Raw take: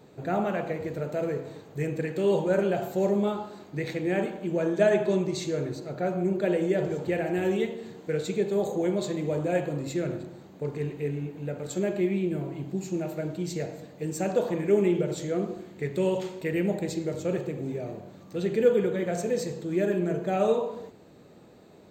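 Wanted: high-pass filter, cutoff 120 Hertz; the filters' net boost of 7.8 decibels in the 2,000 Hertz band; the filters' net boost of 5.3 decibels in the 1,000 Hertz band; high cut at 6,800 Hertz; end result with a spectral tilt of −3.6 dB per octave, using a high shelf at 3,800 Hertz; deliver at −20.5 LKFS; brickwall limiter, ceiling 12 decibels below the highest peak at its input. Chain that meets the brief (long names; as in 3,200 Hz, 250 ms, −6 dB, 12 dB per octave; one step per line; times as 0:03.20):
high-pass filter 120 Hz
low-pass filter 6,800 Hz
parametric band 1,000 Hz +6.5 dB
parametric band 2,000 Hz +9 dB
high-shelf EQ 3,800 Hz −6 dB
level +9 dB
brickwall limiter −9.5 dBFS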